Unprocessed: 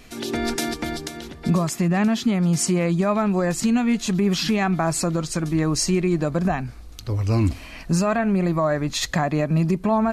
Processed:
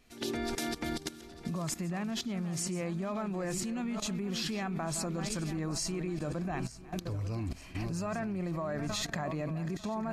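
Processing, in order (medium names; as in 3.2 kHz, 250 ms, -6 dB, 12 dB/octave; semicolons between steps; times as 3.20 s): backward echo that repeats 448 ms, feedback 59%, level -11.5 dB; level held to a coarse grid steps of 15 dB; pre-echo 51 ms -23 dB; trim -4.5 dB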